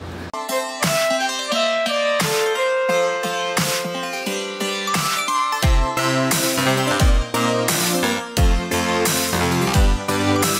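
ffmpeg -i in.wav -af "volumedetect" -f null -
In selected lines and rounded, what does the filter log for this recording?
mean_volume: -19.3 dB
max_volume: -5.1 dB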